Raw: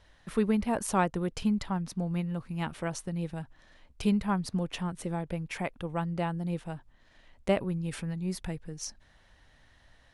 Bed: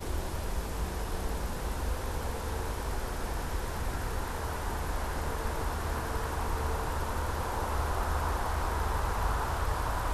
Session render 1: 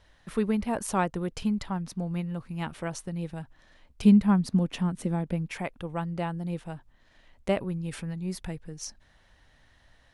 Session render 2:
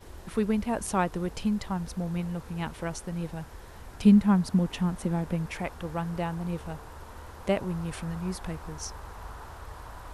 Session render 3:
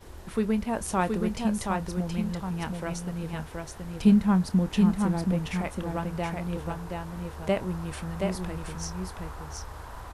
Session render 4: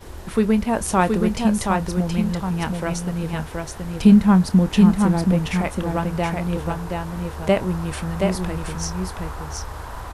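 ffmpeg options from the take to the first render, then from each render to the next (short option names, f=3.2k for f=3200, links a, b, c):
-filter_complex "[0:a]asettb=1/sr,asplit=3[a][b][c];[a]atrim=end=4.024[d];[b]atrim=start=4.02:end=5.49,asetpts=PTS-STARTPTS,afade=t=in:d=0.004:c=qsin,afade=t=out:st=1.466:d=0.004:c=qsin,equalizer=f=220:w=1.5:g=9.5[e];[c]atrim=start=5.486[f];[d][e]acrossfade=d=0.004:c1=hsin:c2=qsin[g];[g][f]acrossfade=d=0.004:c1=qsin:c2=hsin"
-filter_complex "[1:a]volume=-12dB[a];[0:a][a]amix=inputs=2:normalize=0"
-filter_complex "[0:a]asplit=2[a][b];[b]adelay=27,volume=-14dB[c];[a][c]amix=inputs=2:normalize=0,asplit=2[d][e];[e]aecho=0:1:724:0.631[f];[d][f]amix=inputs=2:normalize=0"
-af "volume=8dB,alimiter=limit=-3dB:level=0:latency=1"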